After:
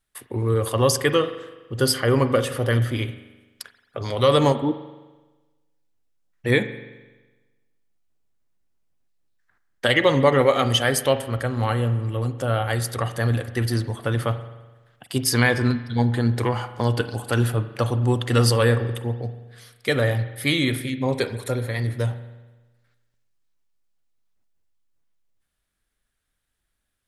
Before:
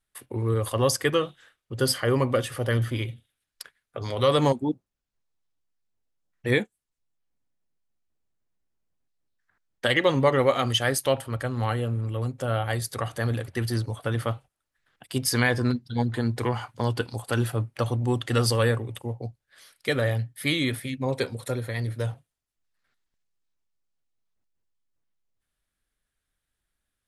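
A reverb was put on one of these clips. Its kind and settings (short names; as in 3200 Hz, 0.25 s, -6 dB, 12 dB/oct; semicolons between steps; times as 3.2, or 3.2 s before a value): spring tank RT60 1.2 s, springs 42 ms, chirp 40 ms, DRR 11 dB; gain +3.5 dB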